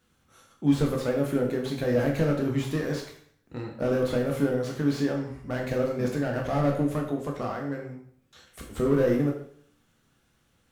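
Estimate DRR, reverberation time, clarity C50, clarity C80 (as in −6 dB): 0.0 dB, 0.60 s, 5.5 dB, 8.5 dB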